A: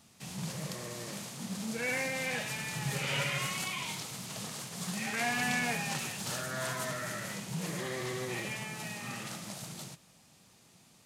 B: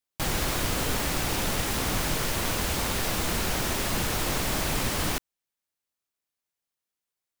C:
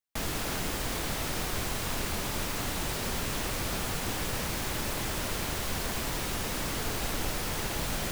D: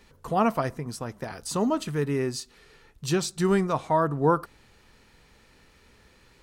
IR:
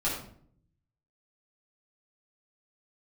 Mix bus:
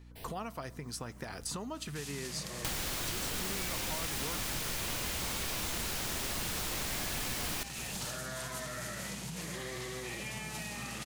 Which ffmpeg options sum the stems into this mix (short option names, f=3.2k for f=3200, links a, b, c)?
-filter_complex "[0:a]acompressor=threshold=-36dB:ratio=6,adelay=1750,volume=2dB[a];[1:a]adelay=2450,volume=1.5dB[b];[2:a]acrusher=bits=5:mix=0:aa=0.000001,asplit=2[c][d];[d]afreqshift=0.65[e];[c][e]amix=inputs=2:normalize=1,volume=-14dB[f];[3:a]acompressor=threshold=-34dB:ratio=2.5,volume=2dB,asplit=2[g][h];[h]apad=whole_len=357685[i];[f][i]sidechaincompress=threshold=-46dB:ratio=10:attack=16:release=778[j];[a][b][j][g]amix=inputs=4:normalize=0,agate=range=-11dB:threshold=-51dB:ratio=16:detection=peak,acrossover=split=1200|2600[k][l][m];[k]acompressor=threshold=-41dB:ratio=4[n];[l]acompressor=threshold=-48dB:ratio=4[o];[m]acompressor=threshold=-37dB:ratio=4[p];[n][o][p]amix=inputs=3:normalize=0,aeval=exprs='val(0)+0.00251*(sin(2*PI*60*n/s)+sin(2*PI*2*60*n/s)/2+sin(2*PI*3*60*n/s)/3+sin(2*PI*4*60*n/s)/4+sin(2*PI*5*60*n/s)/5)':c=same"